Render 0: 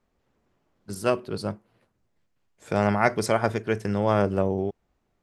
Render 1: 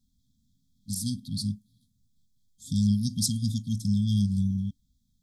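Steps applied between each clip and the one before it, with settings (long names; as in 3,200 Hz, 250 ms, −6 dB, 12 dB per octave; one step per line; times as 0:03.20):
high-shelf EQ 3,000 Hz +8 dB
brick-wall band-stop 270–3,200 Hz
low-shelf EQ 230 Hz +4.5 dB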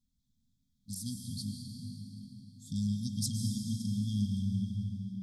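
convolution reverb RT60 4.4 s, pre-delay 105 ms, DRR 1.5 dB
level −8.5 dB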